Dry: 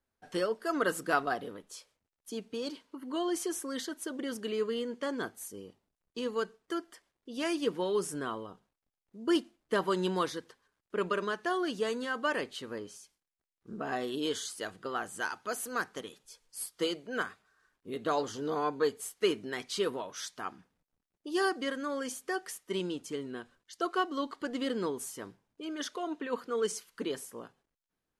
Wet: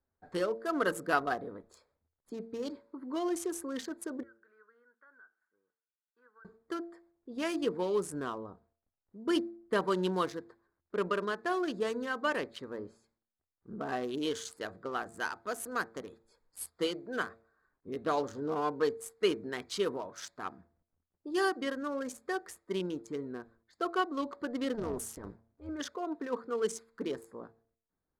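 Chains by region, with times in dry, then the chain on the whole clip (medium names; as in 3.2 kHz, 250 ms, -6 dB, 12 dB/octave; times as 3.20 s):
4.23–6.45 s: band-pass filter 1.5 kHz, Q 14 + compression 3:1, threshold -53 dBFS
24.74–25.69 s: transient shaper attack -12 dB, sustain +6 dB + waveshaping leveller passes 1 + AM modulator 230 Hz, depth 55%
whole clip: local Wiener filter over 15 samples; peaking EQ 81 Hz +14 dB 0.22 oct; de-hum 113.6 Hz, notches 6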